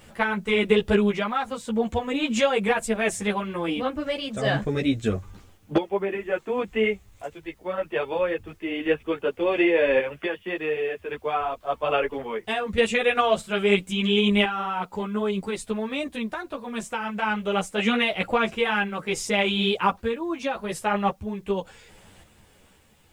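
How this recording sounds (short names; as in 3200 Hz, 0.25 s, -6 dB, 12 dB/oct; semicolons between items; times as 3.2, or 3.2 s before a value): random-step tremolo 1.8 Hz, depth 70%; a quantiser's noise floor 12-bit, dither triangular; a shimmering, thickened sound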